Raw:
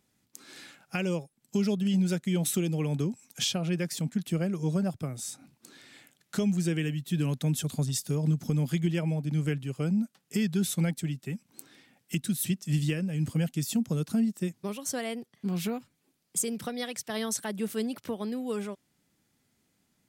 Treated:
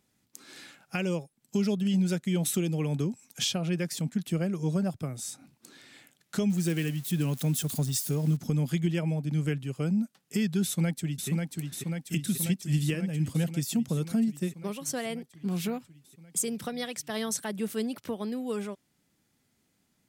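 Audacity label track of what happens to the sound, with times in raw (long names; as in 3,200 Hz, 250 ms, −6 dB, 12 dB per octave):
6.500000	8.370000	spike at every zero crossing of −32.5 dBFS
10.640000	11.290000	delay throw 540 ms, feedback 75%, level −3.5 dB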